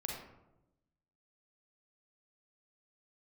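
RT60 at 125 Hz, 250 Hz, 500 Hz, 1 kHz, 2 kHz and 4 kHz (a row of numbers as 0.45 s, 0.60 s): 1.3 s, 1.2 s, 1.0 s, 0.85 s, 0.65 s, 0.45 s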